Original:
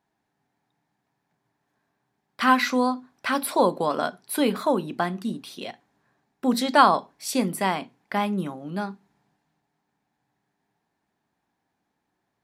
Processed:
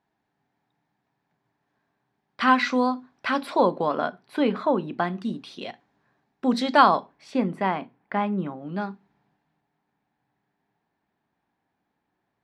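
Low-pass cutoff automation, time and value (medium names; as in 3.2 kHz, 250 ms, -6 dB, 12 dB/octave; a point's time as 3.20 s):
3.29 s 4.6 kHz
4.02 s 2.7 kHz
4.85 s 2.7 kHz
5.27 s 4.8 kHz
6.88 s 4.8 kHz
7.28 s 2.1 kHz
8.42 s 2.1 kHz
8.84 s 3.6 kHz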